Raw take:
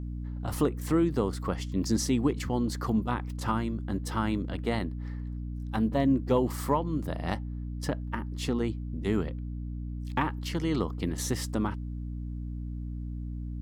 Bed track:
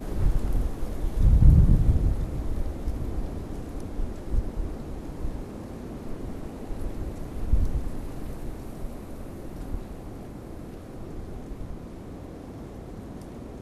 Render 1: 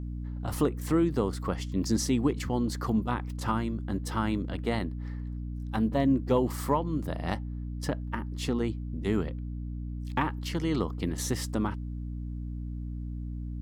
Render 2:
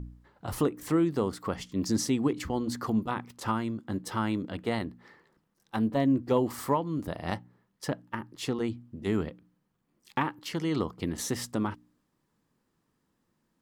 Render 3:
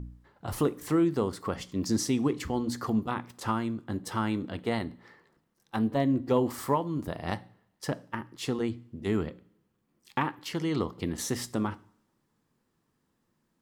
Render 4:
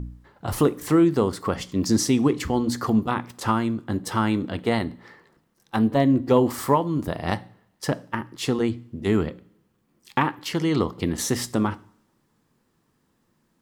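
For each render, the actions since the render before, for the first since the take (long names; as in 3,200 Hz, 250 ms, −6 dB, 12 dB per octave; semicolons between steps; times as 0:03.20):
no processing that can be heard
hum removal 60 Hz, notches 5
coupled-rooms reverb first 0.46 s, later 1.7 s, from −25 dB, DRR 14.5 dB
level +7 dB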